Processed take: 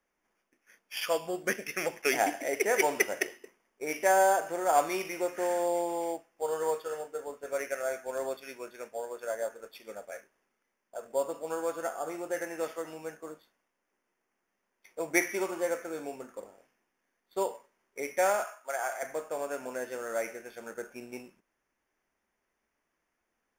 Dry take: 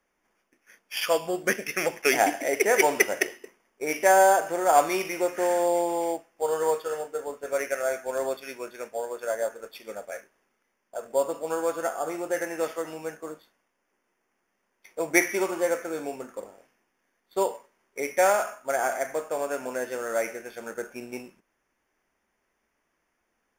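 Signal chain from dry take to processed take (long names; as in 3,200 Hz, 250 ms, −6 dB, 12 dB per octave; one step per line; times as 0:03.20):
0:18.44–0:19.03: high-pass filter 610 Hz 12 dB per octave
level −5.5 dB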